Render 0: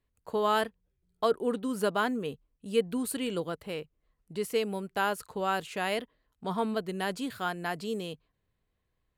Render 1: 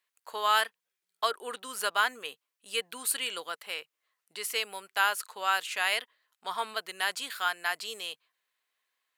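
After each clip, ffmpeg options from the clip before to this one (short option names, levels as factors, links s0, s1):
-af "highpass=1300,volume=2.37"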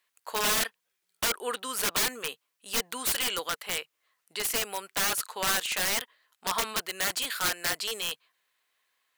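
-af "aeval=exprs='(mod(21.1*val(0)+1,2)-1)/21.1':c=same,volume=2"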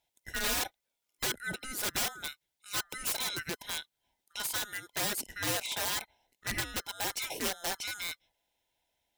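-af "afftfilt=real='real(if(lt(b,960),b+48*(1-2*mod(floor(b/48),2)),b),0)':imag='imag(if(lt(b,960),b+48*(1-2*mod(floor(b/48),2)),b),0)':win_size=2048:overlap=0.75,volume=0.562"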